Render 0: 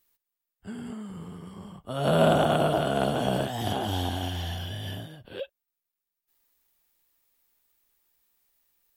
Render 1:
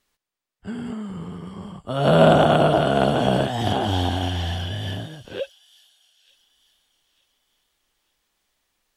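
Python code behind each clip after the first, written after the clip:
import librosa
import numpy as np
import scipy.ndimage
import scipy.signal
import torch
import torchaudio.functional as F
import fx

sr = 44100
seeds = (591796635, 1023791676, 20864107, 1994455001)

y = fx.air_absorb(x, sr, metres=55.0)
y = fx.echo_wet_highpass(y, sr, ms=898, feedback_pct=36, hz=5400.0, wet_db=-9.5)
y = y * librosa.db_to_amplitude(7.0)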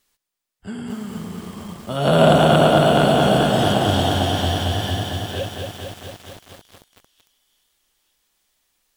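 y = fx.high_shelf(x, sr, hz=4500.0, db=8.0)
y = fx.echo_crushed(y, sr, ms=226, feedback_pct=80, bits=7, wet_db=-4.0)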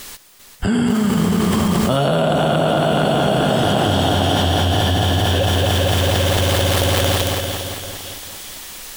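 y = fx.echo_feedback(x, sr, ms=396, feedback_pct=44, wet_db=-10)
y = fx.env_flatten(y, sr, amount_pct=100)
y = y * librosa.db_to_amplitude(-5.5)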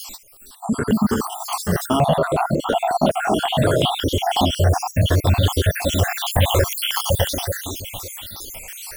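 y = fx.spec_dropout(x, sr, seeds[0], share_pct=61)
y = fx.phaser_held(y, sr, hz=5.5, low_hz=450.0, high_hz=1700.0)
y = y * librosa.db_to_amplitude(5.0)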